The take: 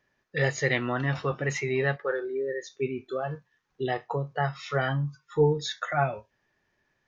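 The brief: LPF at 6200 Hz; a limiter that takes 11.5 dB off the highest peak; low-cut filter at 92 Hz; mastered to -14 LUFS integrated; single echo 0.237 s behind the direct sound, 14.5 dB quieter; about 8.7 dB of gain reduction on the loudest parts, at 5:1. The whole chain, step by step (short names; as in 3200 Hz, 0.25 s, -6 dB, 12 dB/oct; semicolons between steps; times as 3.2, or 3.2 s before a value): HPF 92 Hz; LPF 6200 Hz; compressor 5:1, threshold -26 dBFS; limiter -28 dBFS; echo 0.237 s -14.5 dB; gain +23.5 dB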